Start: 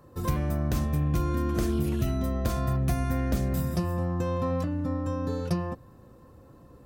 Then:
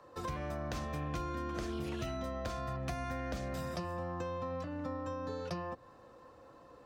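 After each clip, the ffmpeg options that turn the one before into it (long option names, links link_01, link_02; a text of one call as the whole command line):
ffmpeg -i in.wav -filter_complex "[0:a]acrossover=split=400 6800:gain=0.141 1 0.126[link_01][link_02][link_03];[link_01][link_02][link_03]amix=inputs=3:normalize=0,bandreject=frequency=390:width=13,acrossover=split=220[link_04][link_05];[link_05]acompressor=threshold=-41dB:ratio=6[link_06];[link_04][link_06]amix=inputs=2:normalize=0,volume=2.5dB" out.wav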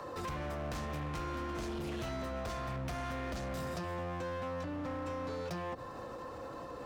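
ffmpeg -i in.wav -af "asoftclip=type=hard:threshold=-39.5dB,alimiter=level_in=26.5dB:limit=-24dB:level=0:latency=1:release=57,volume=-26.5dB,volume=14.5dB" out.wav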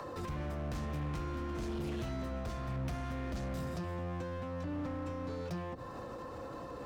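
ffmpeg -i in.wav -filter_complex "[0:a]acrossover=split=340[link_01][link_02];[link_02]acompressor=threshold=-47dB:ratio=4[link_03];[link_01][link_03]amix=inputs=2:normalize=0,volume=3dB" out.wav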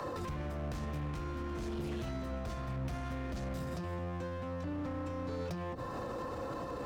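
ffmpeg -i in.wav -af "alimiter=level_in=14dB:limit=-24dB:level=0:latency=1:release=58,volume=-14dB,volume=6.5dB" out.wav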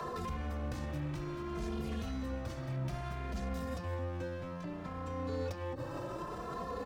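ffmpeg -i in.wav -filter_complex "[0:a]asplit=2[link_01][link_02];[link_02]adelay=2.5,afreqshift=0.62[link_03];[link_01][link_03]amix=inputs=2:normalize=1,volume=3dB" out.wav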